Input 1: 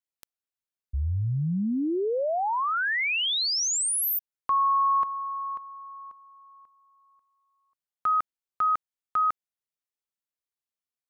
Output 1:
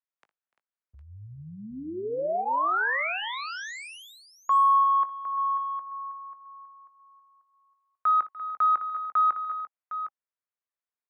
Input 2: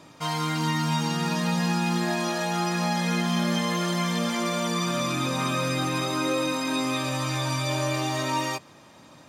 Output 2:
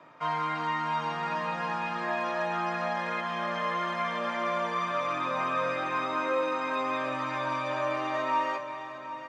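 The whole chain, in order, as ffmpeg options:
-filter_complex "[0:a]highpass=130,lowpass=7k,asplit=2[a][b];[b]adelay=19,volume=-13.5dB[c];[a][c]amix=inputs=2:normalize=0,acrossover=split=300[d][e];[d]alimiter=level_in=5.5dB:limit=-24dB:level=0:latency=1:release=271,volume=-5.5dB[f];[f][e]amix=inputs=2:normalize=0,acrossover=split=570 2200:gain=0.224 1 0.0708[g][h][i];[g][h][i]amix=inputs=3:normalize=0,acontrast=88,bandreject=f=810:w=12,aecho=1:1:59|295|344|759:0.15|0.106|0.224|0.282,volume=-5dB"

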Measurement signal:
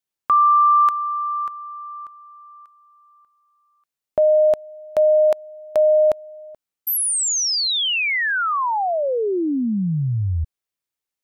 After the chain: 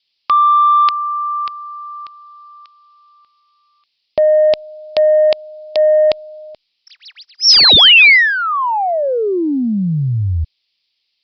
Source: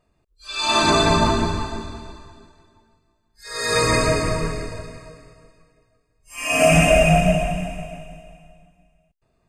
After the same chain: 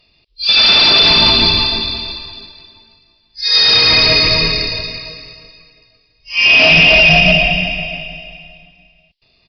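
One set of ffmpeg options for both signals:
-af "aexciter=amount=7.8:drive=8:freq=2.3k,aresample=11025,asoftclip=type=tanh:threshold=-8dB,aresample=44100,alimiter=level_in=6dB:limit=-1dB:release=50:level=0:latency=1,volume=-1dB" -ar 48000 -c:a libopus -b:a 256k

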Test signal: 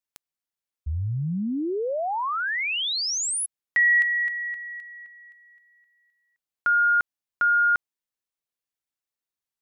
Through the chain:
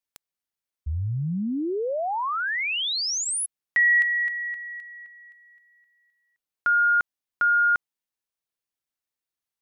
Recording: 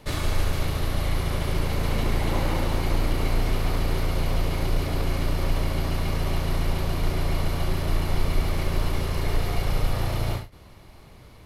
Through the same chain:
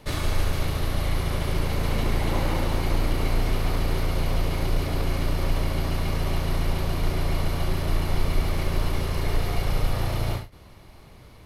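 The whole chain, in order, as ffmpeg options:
-af "bandreject=f=7.3k:w=27"

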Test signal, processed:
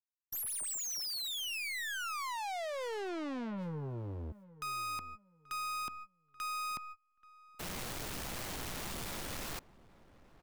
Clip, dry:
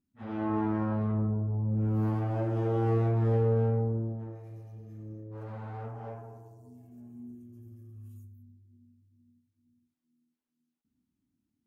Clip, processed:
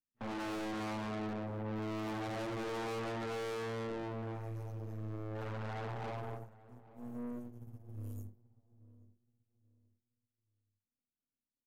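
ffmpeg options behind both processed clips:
-filter_complex "[0:a]aeval=exprs='if(lt(val(0),0),0.251*val(0),val(0))':c=same,agate=range=-32dB:threshold=-49dB:ratio=16:detection=peak,acrossover=split=230|760[a][b][c];[a]acompressor=threshold=-43dB:ratio=6[d];[d][b][c]amix=inputs=3:normalize=0,aeval=exprs='(tanh(355*val(0)+0.15)-tanh(0.15))/355':c=same,asplit=2[e][f];[f]adelay=832,lowpass=f=1k:p=1,volume=-17.5dB,asplit=2[g][h];[h]adelay=832,lowpass=f=1k:p=1,volume=0.28,asplit=2[i][j];[j]adelay=832,lowpass=f=1k:p=1,volume=0.28[k];[e][g][i][k]amix=inputs=4:normalize=0,volume=13dB"

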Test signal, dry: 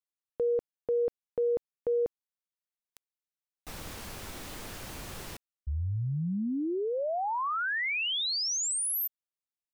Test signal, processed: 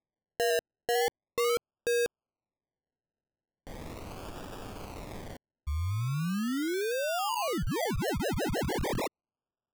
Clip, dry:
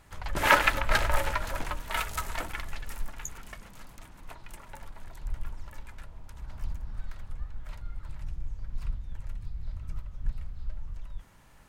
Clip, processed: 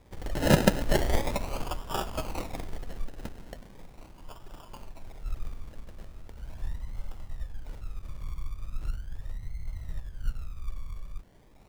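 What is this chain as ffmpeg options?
-af "acrusher=samples=30:mix=1:aa=0.000001:lfo=1:lforange=18:lforate=0.39"

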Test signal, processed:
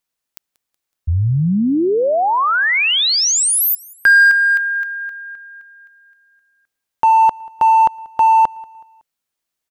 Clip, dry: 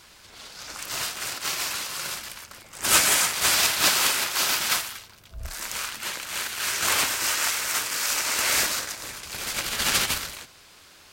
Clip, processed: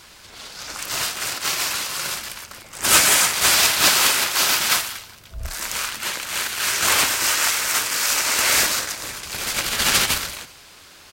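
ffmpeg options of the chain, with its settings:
-filter_complex "[0:a]asplit=2[a][b];[b]asoftclip=type=hard:threshold=-16.5dB,volume=-4dB[c];[a][c]amix=inputs=2:normalize=0,aecho=1:1:186|372|558:0.0631|0.0278|0.0122,volume=1dB"

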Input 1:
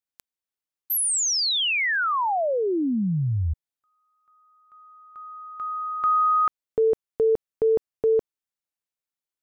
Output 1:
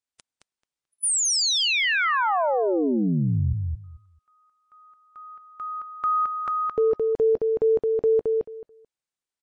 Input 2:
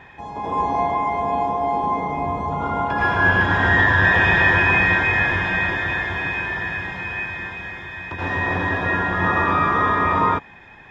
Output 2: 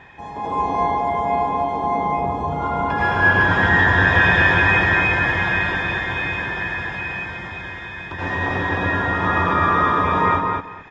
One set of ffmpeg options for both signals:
-filter_complex "[0:a]highshelf=f=6.3k:g=2,asplit=2[a][b];[b]adelay=218,lowpass=f=4.6k:p=1,volume=-3dB,asplit=2[c][d];[d]adelay=218,lowpass=f=4.6k:p=1,volume=0.18,asplit=2[e][f];[f]adelay=218,lowpass=f=4.6k:p=1,volume=0.18[g];[a][c][e][g]amix=inputs=4:normalize=0" -ar 22050 -c:a libmp3lame -b:a 40k

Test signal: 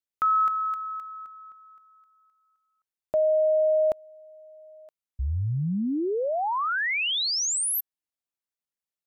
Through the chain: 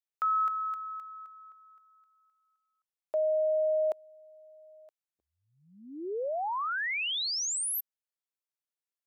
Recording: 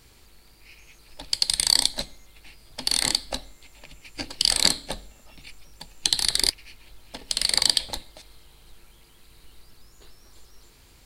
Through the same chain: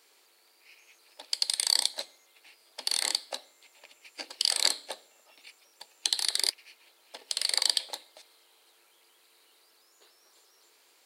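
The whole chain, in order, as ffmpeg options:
-af "highpass=f=390:w=0.5412,highpass=f=390:w=1.3066,volume=-5.5dB"

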